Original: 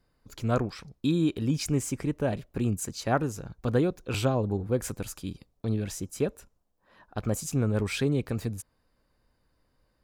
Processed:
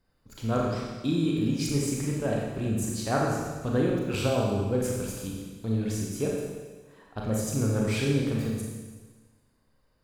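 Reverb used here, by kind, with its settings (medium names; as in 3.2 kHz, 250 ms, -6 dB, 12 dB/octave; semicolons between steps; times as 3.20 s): Schroeder reverb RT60 1.4 s, combs from 28 ms, DRR -2.5 dB; trim -3 dB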